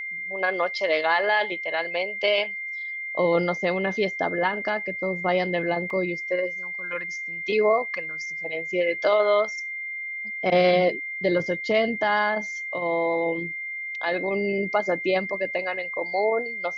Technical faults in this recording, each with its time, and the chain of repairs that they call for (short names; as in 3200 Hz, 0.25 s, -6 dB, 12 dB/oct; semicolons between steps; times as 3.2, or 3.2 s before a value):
tone 2100 Hz -30 dBFS
5.9 gap 2.5 ms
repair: notch 2100 Hz, Q 30; interpolate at 5.9, 2.5 ms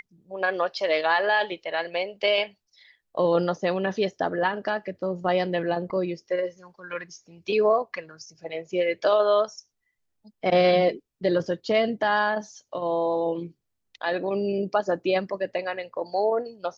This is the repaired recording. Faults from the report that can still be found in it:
none